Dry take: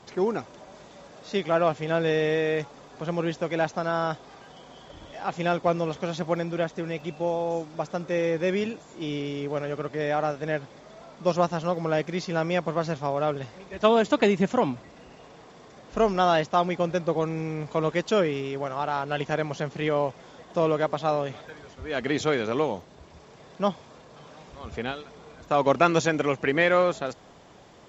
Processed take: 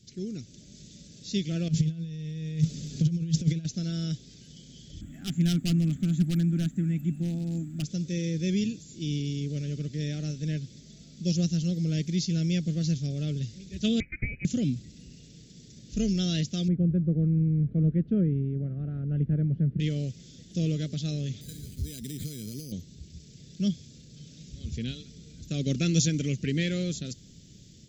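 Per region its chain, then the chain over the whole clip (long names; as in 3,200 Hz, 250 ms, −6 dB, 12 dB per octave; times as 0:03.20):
0:01.68–0:03.65: parametric band 160 Hz +9.5 dB 0.29 octaves + compressor whose output falls as the input rises −30 dBFS, ratio −0.5
0:05.01–0:07.84: drawn EQ curve 110 Hz 0 dB, 270 Hz +8 dB, 470 Hz −11 dB, 910 Hz +14 dB, 1,700 Hz +6 dB, 5,400 Hz −27 dB, 8,900 Hz +13 dB + hard clipping −17 dBFS
0:14.00–0:14.45: high-pass filter 410 Hz + voice inversion scrambler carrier 2,700 Hz + high-frequency loss of the air 340 metres
0:16.68–0:19.80: low-pass filter 1,400 Hz 24 dB per octave + low-shelf EQ 180 Hz +5.5 dB
0:21.41–0:22.72: downward compressor, threshold −36 dBFS + bad sample-rate conversion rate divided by 8×, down none, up hold + low-shelf EQ 400 Hz +5.5 dB
whole clip: Chebyshev band-stop filter 170–5,200 Hz, order 2; parametric band 1,100 Hz +3.5 dB 1.4 octaves; automatic gain control gain up to 7 dB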